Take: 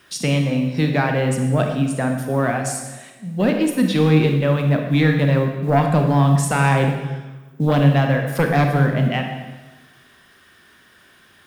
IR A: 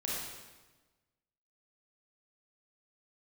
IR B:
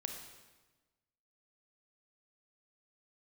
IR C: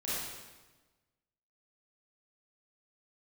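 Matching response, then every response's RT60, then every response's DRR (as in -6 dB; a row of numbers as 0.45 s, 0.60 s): B; 1.2 s, 1.2 s, 1.2 s; -5.5 dB, 3.5 dB, -10.5 dB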